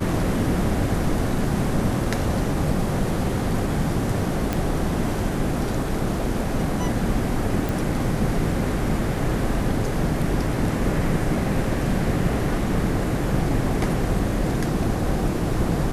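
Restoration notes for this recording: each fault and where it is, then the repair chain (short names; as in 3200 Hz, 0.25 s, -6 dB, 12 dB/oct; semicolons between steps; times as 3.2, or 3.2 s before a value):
4.53 pop
7.69 pop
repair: de-click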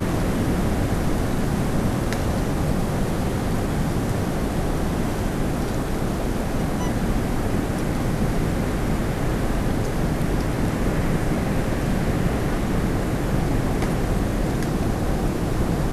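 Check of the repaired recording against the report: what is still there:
none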